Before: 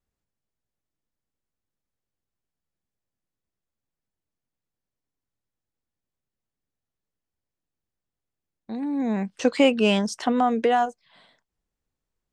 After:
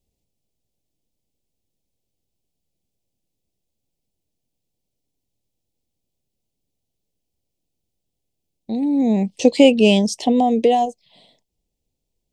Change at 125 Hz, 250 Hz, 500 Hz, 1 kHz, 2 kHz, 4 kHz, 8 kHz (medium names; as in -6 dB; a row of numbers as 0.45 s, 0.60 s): no reading, +7.5 dB, +6.5 dB, +3.0 dB, +1.5 dB, +5.5 dB, +7.0 dB